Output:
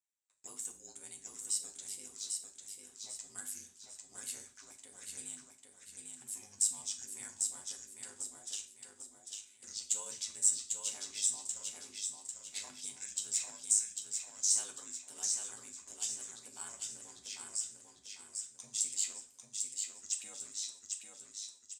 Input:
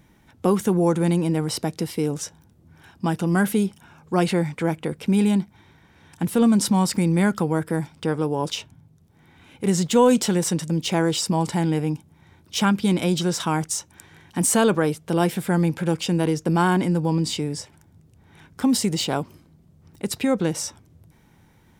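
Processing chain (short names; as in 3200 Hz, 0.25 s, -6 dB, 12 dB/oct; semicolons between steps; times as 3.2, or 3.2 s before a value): trilling pitch shifter -6.5 st, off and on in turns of 0.235 s; gate with hold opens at -42 dBFS; in parallel at -0.5 dB: compressor 8:1, threshold -28 dBFS, peak gain reduction 16 dB; on the sum: band-pass 7700 Hz, Q 6.5; short-mantissa float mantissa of 4-bit; ring modulator 51 Hz; feedback echo 0.797 s, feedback 40%, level -4 dB; on a send at -4 dB: reverb RT60 0.45 s, pre-delay 4 ms; on the sum: gain +2.5 dB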